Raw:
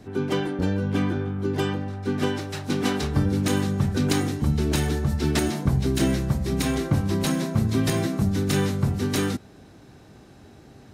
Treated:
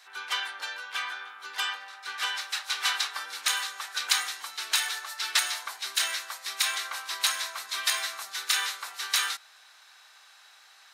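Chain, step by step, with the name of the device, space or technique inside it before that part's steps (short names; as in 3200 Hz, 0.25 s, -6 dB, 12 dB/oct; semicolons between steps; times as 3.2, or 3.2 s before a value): headphones lying on a table (HPF 1100 Hz 24 dB/oct; bell 3900 Hz +4 dB 0.53 oct); gain +4 dB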